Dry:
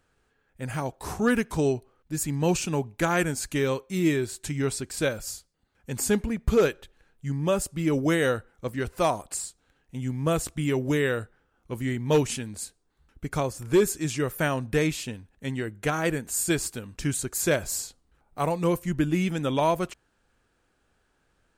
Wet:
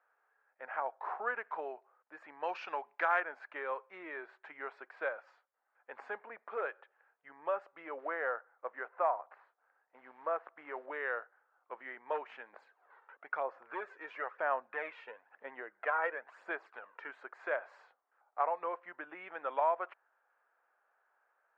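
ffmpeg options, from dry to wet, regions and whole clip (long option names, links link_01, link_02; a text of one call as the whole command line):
ffmpeg -i in.wav -filter_complex "[0:a]asettb=1/sr,asplit=3[link_01][link_02][link_03];[link_01]atrim=end=2.434[link_04];[link_02]atrim=start=2.43:end=3.2,asetpts=PTS-STARTPTS,afade=type=in:duration=0.004:curve=qsin,afade=type=out:start_time=0.766:duration=0.004:curve=qsin,lowpass=frequency=5200:width_type=q:width=3.3,highshelf=frequency=2200:gain=9[link_05];[link_03]atrim=start=3.196[link_06];[link_04][link_05]acrossfade=duration=0.004:curve1=hsin:curve2=qsin[link_07];[link_07][link_06]acrossfade=duration=0.004:curve1=qsin:curve2=hsin,asettb=1/sr,asplit=3[link_08][link_09][link_10];[link_08]atrim=end=7.994[link_11];[link_09]atrim=start=7.99:end=10.86,asetpts=PTS-STARTPTS,afade=type=in:duration=0.004:curve=qsin,afade=type=out:start_time=2.866:duration=0.004:curve=qsin,lowpass=2000,lowshelf=frequency=130:gain=-5.5,acrusher=bits=6:mode=log:mix=0:aa=0.000001[link_12];[link_10]atrim=start=10.856[link_13];[link_11][link_12]acrossfade=duration=0.004:curve1=hsin:curve2=qsin[link_14];[link_14][link_13]acrossfade=duration=0.004:curve1=qsin:curve2=hsin,asettb=1/sr,asplit=3[link_15][link_16][link_17];[link_15]atrim=end=12.534[link_18];[link_16]atrim=start=12.53:end=17.09,asetpts=PTS-STARTPTS,afade=type=in:duration=0.004:curve=qsin,afade=type=out:start_time=4.556:duration=0.004:curve=qsin,acompressor=mode=upward:threshold=-36dB:ratio=2.5:attack=3.2:release=140:knee=2.83:detection=peak,aphaser=in_gain=1:out_gain=1:delay=2.2:decay=0.5:speed=1:type=sinusoidal[link_19];[link_17]atrim=start=17.086[link_20];[link_18][link_19]acrossfade=duration=0.004:curve1=hsin:curve2=qsin[link_21];[link_21][link_20]acrossfade=duration=0.004:curve1=qsin:curve2=hsin,lowpass=frequency=1700:width=0.5412,lowpass=frequency=1700:width=1.3066,acompressor=threshold=-25dB:ratio=2.5,highpass=frequency=650:width=0.5412,highpass=frequency=650:width=1.3066" out.wav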